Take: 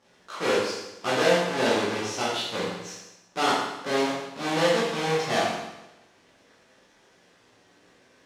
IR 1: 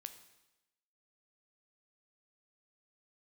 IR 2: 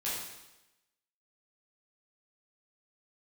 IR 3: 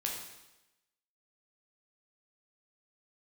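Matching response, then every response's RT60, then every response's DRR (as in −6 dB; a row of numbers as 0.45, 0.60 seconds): 2; 0.95, 0.95, 0.95 seconds; 8.5, −9.0, −1.5 decibels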